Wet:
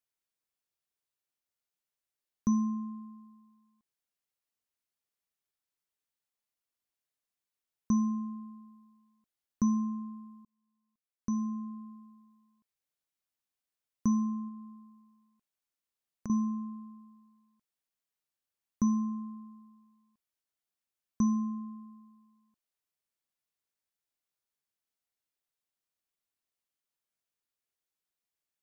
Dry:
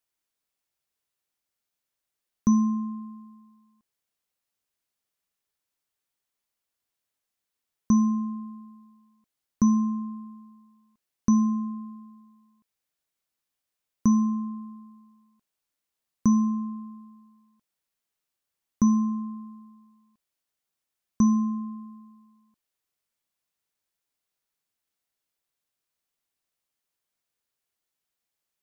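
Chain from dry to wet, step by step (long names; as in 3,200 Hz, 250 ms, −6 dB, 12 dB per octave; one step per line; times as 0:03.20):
0:10.45–0:11.91: fade in
0:14.48–0:16.30: downward compressor, threshold −34 dBFS, peak gain reduction 16 dB
level −7 dB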